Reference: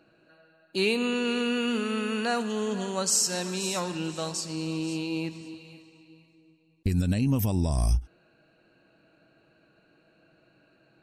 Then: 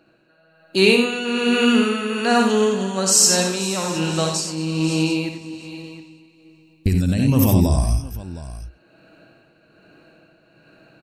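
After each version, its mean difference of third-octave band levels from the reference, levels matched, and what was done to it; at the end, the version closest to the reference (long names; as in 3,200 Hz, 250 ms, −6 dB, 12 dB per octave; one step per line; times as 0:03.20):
3.0 dB: multi-tap delay 63/89/218/715 ms −6.5/−6/−17.5/−17 dB
automatic gain control gain up to 7.5 dB
amplitude tremolo 1.2 Hz, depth 54%
level +3 dB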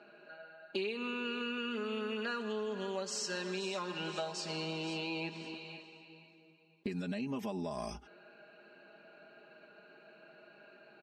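7.5 dB: band-pass filter 320–3,500 Hz
comb filter 4.9 ms, depth 92%
downward compressor 8 to 1, threshold −39 dBFS, peak gain reduction 19 dB
level +4 dB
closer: first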